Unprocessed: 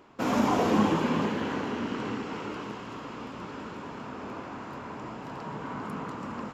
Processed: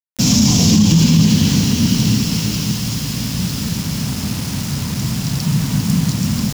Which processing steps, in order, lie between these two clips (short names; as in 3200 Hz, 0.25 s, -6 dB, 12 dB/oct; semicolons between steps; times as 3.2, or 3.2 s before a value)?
EQ curve 170 Hz 0 dB, 370 Hz -25 dB, 1400 Hz -30 dB, 5500 Hz +7 dB, 10000 Hz -3 dB; bit-crush 9-bit; maximiser +30 dB; gain -2.5 dB